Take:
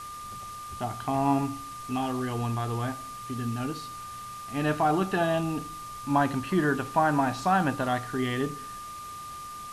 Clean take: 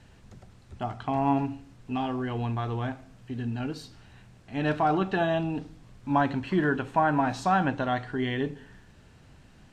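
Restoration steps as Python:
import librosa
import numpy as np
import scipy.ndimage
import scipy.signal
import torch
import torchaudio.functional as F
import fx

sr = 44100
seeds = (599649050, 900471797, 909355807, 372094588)

y = fx.notch(x, sr, hz=1200.0, q=30.0)
y = fx.noise_reduce(y, sr, print_start_s=8.79, print_end_s=9.29, reduce_db=13.0)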